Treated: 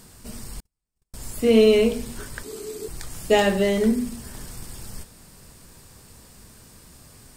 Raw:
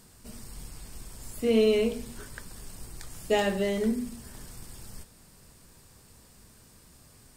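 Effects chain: 0.6–1.14 gate -34 dBFS, range -49 dB; 2.43–2.88 frequency shift -450 Hz; gain +7 dB

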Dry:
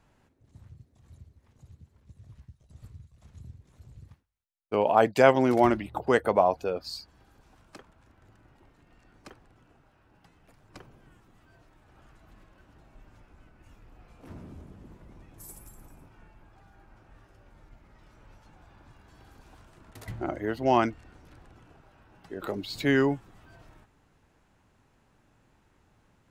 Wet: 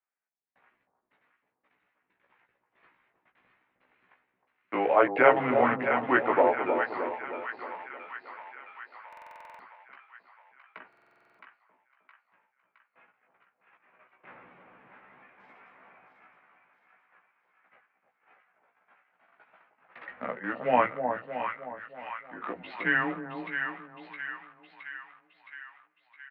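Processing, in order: gate -51 dBFS, range -31 dB; low shelf 340 Hz -9.5 dB; in parallel at -7.5 dB: bit-crush 5-bit; on the sum: notches 50/100/150/200/250 Hz; mistuned SSB -120 Hz 270–2400 Hz; tilt +3 dB/oct; doubler 16 ms -3 dB; on a send: split-band echo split 970 Hz, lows 0.311 s, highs 0.666 s, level -6 dB; on the sum: stuck buffer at 9.08/10.88, samples 2048, times 10; mismatched tape noise reduction encoder only; gain -1 dB

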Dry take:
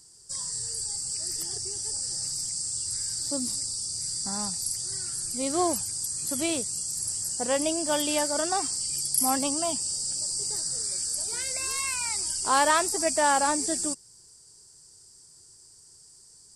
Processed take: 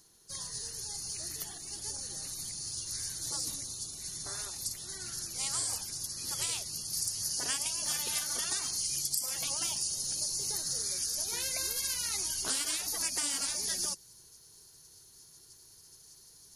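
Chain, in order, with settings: high shelf 3300 Hz +5.5 dB, from 6.93 s +12 dB; spectral gate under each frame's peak -15 dB weak; compressor 16:1, threshold -29 dBFS, peak gain reduction 14 dB

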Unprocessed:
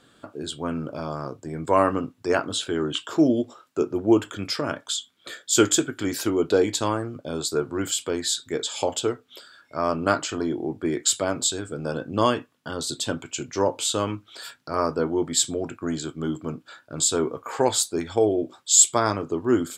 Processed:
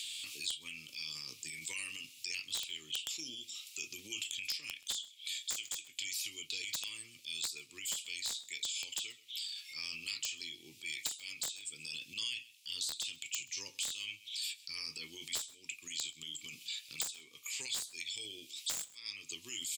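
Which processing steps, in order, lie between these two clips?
elliptic high-pass 2400 Hz, stop band 40 dB; added harmonics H 3 -11 dB, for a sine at -2 dBFS; transient shaper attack -6 dB, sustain +7 dB; compressor 20:1, threshold -48 dBFS, peak gain reduction 30 dB; wrapped overs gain 40 dB; echo 0.129 s -23.5 dB; three-band squash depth 100%; gain +15 dB

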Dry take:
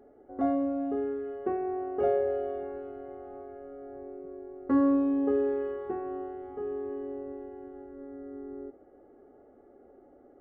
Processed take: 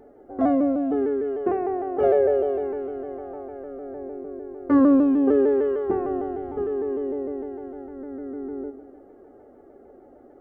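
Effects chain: 5.88–6.64 low shelf 270 Hz +8.5 dB; darkening echo 0.101 s, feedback 60%, level -14 dB; shaped vibrato saw down 6.6 Hz, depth 100 cents; gain +6.5 dB

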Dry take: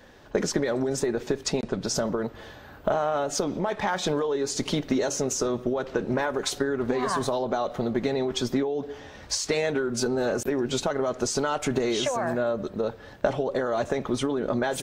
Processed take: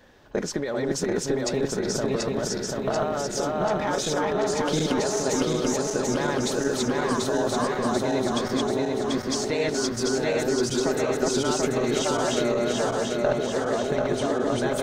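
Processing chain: regenerating reverse delay 0.369 s, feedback 77%, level 0 dB; gain -3 dB

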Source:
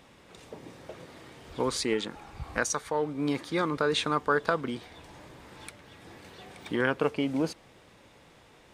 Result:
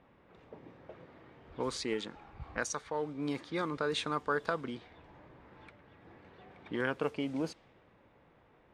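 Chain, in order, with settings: low-pass opened by the level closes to 1700 Hz, open at -22.5 dBFS; gain -6.5 dB

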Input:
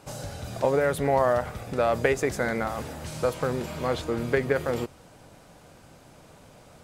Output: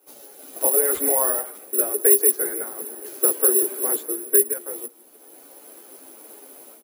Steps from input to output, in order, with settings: steep high-pass 230 Hz 96 dB/oct; bell 370 Hz +10.5 dB 0.68 oct; harmonic-percussive split harmonic -5 dB; 1.72–4.47 thirty-one-band EQ 400 Hz +12 dB, 1600 Hz +6 dB, 8000 Hz -11 dB; AGC gain up to 14 dB; echo 0.161 s -19.5 dB; careless resampling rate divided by 4×, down none, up zero stuff; ensemble effect; gain -8.5 dB

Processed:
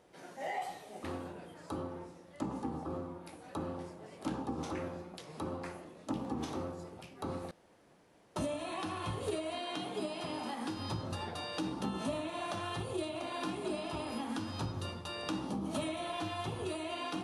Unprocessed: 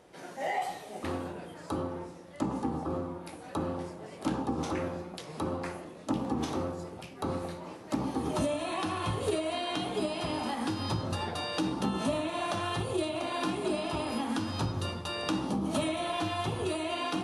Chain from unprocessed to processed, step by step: 7.51–8.36 room tone; 9.59–10.77 HPF 130 Hz 12 dB/oct; gain -6 dB

